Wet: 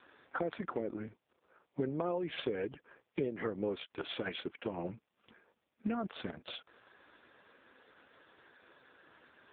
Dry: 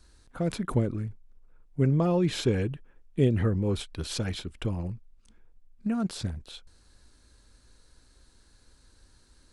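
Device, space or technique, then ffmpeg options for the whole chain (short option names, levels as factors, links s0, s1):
voicemail: -af "highpass=420,lowpass=3100,acompressor=threshold=0.00501:ratio=6,volume=4.73" -ar 8000 -c:a libopencore_amrnb -b:a 4750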